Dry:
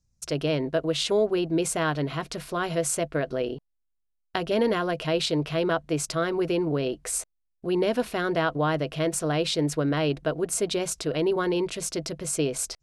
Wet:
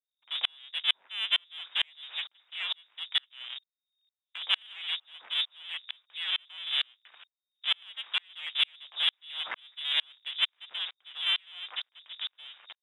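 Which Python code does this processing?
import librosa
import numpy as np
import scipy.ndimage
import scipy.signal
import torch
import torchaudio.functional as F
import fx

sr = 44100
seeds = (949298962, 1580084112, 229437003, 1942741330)

p1 = fx.cycle_switch(x, sr, every=2, mode='inverted')
p2 = fx.freq_invert(p1, sr, carrier_hz=3700)
p3 = scipy.signal.sosfilt(scipy.signal.butter(2, 1000.0, 'highpass', fs=sr, output='sos'), p2)
p4 = 10.0 ** (-20.5 / 20.0) * np.tanh(p3 / 10.0 ** (-20.5 / 20.0))
p5 = p3 + (p4 * librosa.db_to_amplitude(-9.5))
y = fx.tremolo_decay(p5, sr, direction='swelling', hz=2.2, depth_db=39)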